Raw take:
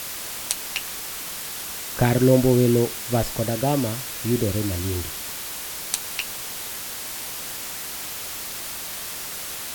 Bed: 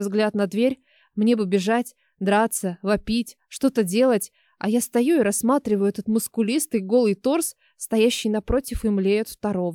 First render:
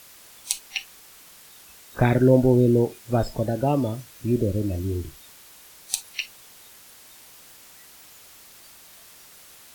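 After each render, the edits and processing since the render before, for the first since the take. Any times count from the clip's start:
noise reduction from a noise print 16 dB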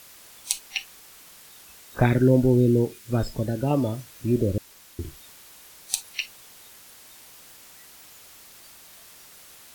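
0:02.06–0:03.71: parametric band 720 Hz −9 dB 0.9 octaves
0:04.58–0:04.99: fill with room tone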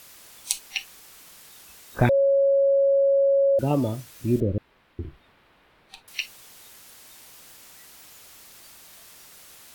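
0:02.09–0:03.59: beep over 552 Hz −16 dBFS
0:04.40–0:06.08: high-frequency loss of the air 470 metres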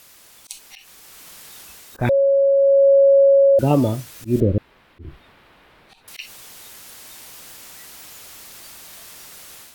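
automatic gain control gain up to 7.5 dB
volume swells 140 ms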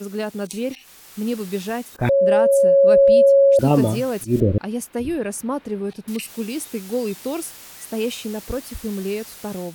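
mix in bed −5.5 dB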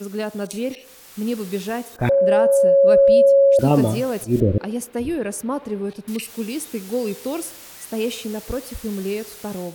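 delay with a band-pass on its return 64 ms, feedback 64%, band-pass 720 Hz, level −17.5 dB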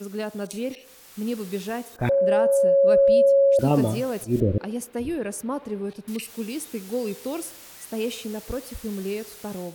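level −4 dB

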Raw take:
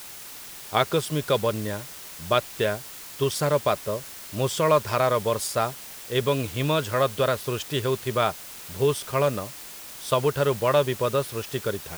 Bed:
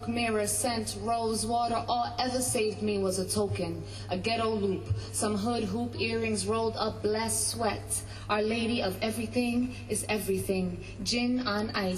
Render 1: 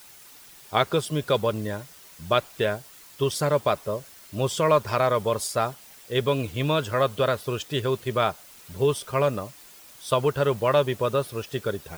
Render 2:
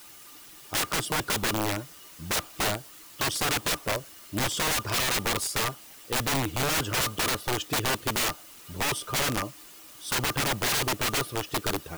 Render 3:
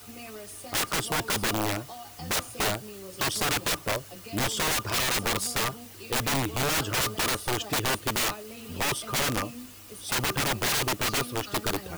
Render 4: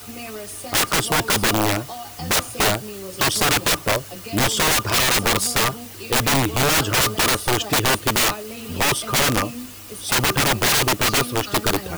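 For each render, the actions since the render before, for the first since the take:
broadband denoise 9 dB, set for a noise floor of −41 dBFS
hollow resonant body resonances 310/1,200/2,900 Hz, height 11 dB, ringing for 80 ms; wrap-around overflow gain 21 dB
mix in bed −14.5 dB
level +8.5 dB

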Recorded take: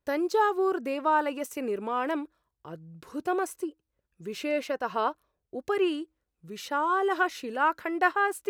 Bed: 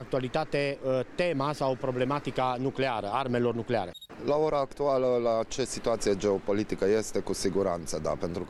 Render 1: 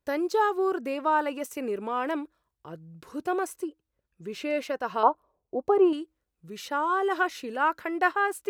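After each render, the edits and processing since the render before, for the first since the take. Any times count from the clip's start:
0:03.68–0:04.50: high-shelf EQ 6,800 Hz −6 dB
0:05.03–0:05.93: drawn EQ curve 120 Hz 0 dB, 980 Hz +10 dB, 1,700 Hz −11 dB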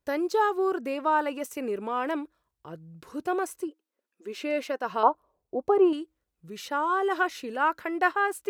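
0:03.67–0:04.86: linear-phase brick-wall high-pass 210 Hz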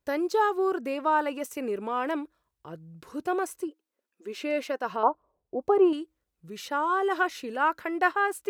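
0:04.96–0:05.61: head-to-tape spacing loss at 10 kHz 25 dB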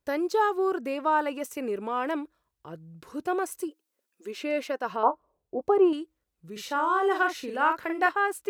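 0:03.52–0:04.31: high-shelf EQ 3,900 Hz +9 dB
0:05.01–0:05.61: double-tracking delay 25 ms −11 dB
0:06.52–0:08.09: double-tracking delay 43 ms −5.5 dB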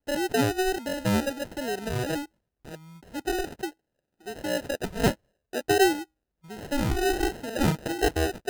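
decimation without filtering 39×
pitch vibrato 1.4 Hz 36 cents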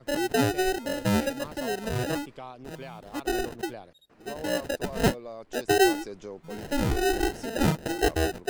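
mix in bed −14 dB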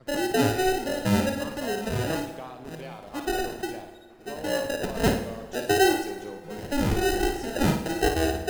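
on a send: flutter between parallel walls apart 9.5 metres, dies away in 0.5 s
on the sum: dense smooth reverb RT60 1.8 s, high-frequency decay 0.75×, DRR 10.5 dB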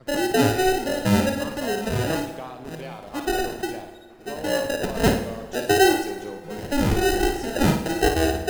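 level +3.5 dB

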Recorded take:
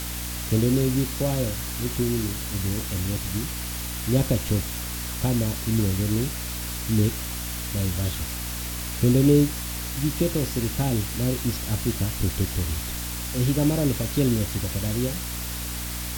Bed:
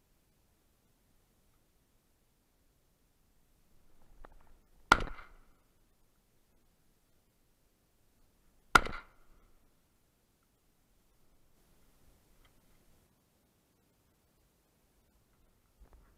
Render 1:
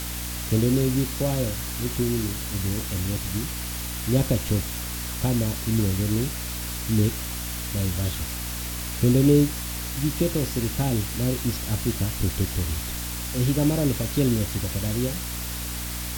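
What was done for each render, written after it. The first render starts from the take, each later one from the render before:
no processing that can be heard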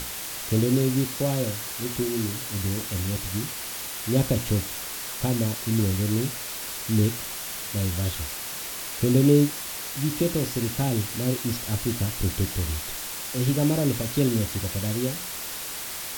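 mains-hum notches 60/120/180/240/300 Hz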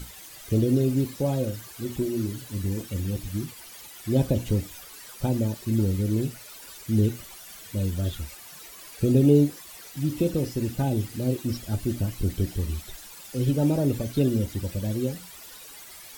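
broadband denoise 14 dB, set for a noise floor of −34 dBFS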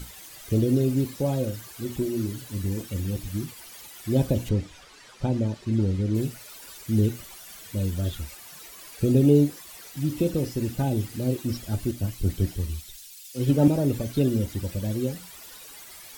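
0:04.49–0:06.15: high-frequency loss of the air 90 metres
0:11.91–0:13.68: multiband upward and downward expander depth 100%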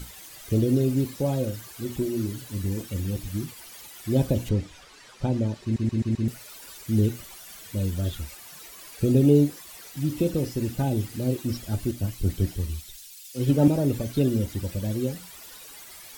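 0:05.63: stutter in place 0.13 s, 5 plays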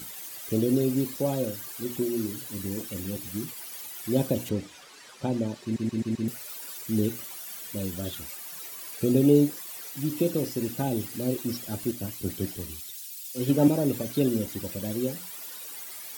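high-pass filter 180 Hz 12 dB per octave
high-shelf EQ 11,000 Hz +9 dB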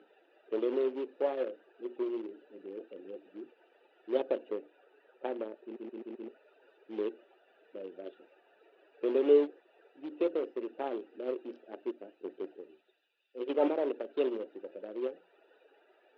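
adaptive Wiener filter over 41 samples
elliptic band-pass filter 390–3,100 Hz, stop band 50 dB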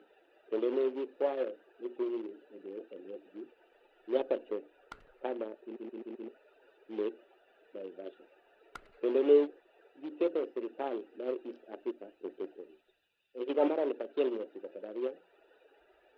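mix in bed −25.5 dB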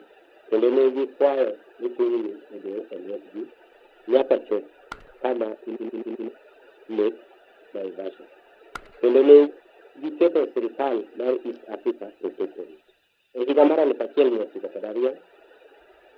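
level +12 dB

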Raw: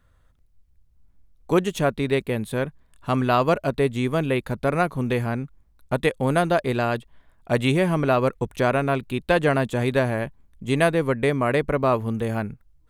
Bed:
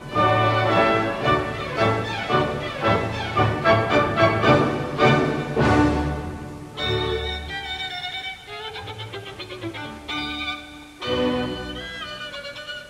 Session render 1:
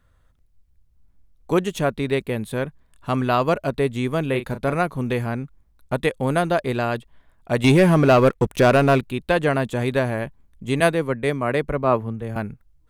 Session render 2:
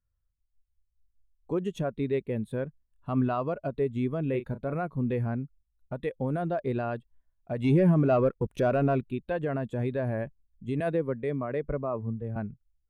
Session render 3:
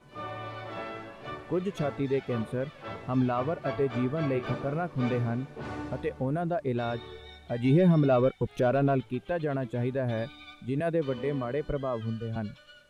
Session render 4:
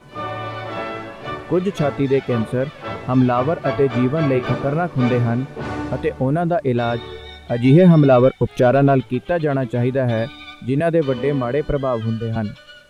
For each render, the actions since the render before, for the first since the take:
0:04.30–0:04.75: double-tracking delay 37 ms −10 dB; 0:07.64–0:09.01: leveller curve on the samples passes 2; 0:10.80–0:12.36: multiband upward and downward expander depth 100%
brickwall limiter −14.5 dBFS, peak gain reduction 11 dB; every bin expanded away from the loudest bin 1.5 to 1
mix in bed −20 dB
level +11 dB

